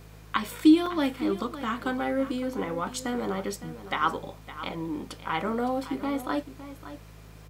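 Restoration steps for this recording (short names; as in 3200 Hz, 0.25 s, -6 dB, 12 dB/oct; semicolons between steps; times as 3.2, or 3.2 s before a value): de-hum 52.9 Hz, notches 3; interpolate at 0.86, 3.7 ms; inverse comb 0.561 s -13.5 dB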